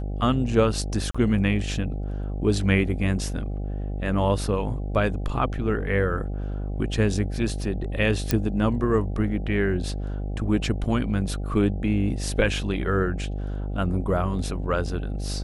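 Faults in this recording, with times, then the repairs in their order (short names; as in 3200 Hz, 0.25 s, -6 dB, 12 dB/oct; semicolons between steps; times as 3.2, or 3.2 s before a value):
buzz 50 Hz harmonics 16 -29 dBFS
1.11–1.15 gap 35 ms
8.31 pop -7 dBFS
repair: de-click; de-hum 50 Hz, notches 16; interpolate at 1.11, 35 ms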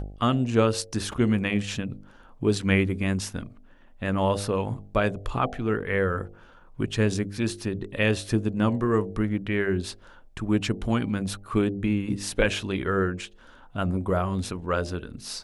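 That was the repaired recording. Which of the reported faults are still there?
none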